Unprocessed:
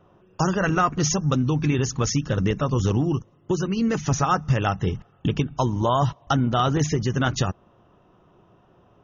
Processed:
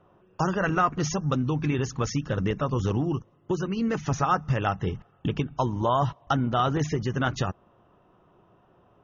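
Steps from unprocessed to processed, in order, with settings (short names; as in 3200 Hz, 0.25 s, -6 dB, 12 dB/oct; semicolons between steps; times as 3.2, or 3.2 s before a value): LPF 2200 Hz 6 dB/oct; low shelf 490 Hz -5 dB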